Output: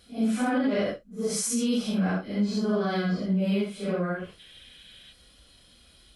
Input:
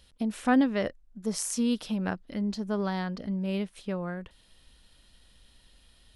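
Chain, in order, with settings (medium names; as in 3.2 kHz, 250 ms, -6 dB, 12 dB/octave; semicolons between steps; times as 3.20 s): phase randomisation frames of 200 ms; peak limiter -24 dBFS, peak gain reduction 9.5 dB; comb of notches 920 Hz; time-frequency box 4.39–5.13 s, 1.5–3.9 kHz +10 dB; trim +6.5 dB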